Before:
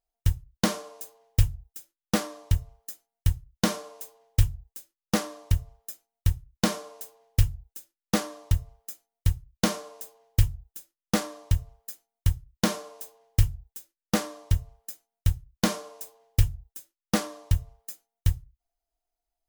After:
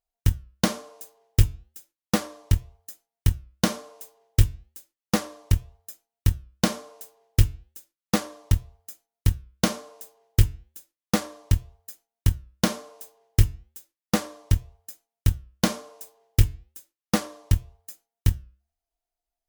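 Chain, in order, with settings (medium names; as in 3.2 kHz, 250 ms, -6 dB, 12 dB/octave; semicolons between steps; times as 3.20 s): Chebyshev shaper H 7 -24 dB, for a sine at -6.5 dBFS; flange 1 Hz, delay 4.4 ms, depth 3.9 ms, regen -89%; trim +7.5 dB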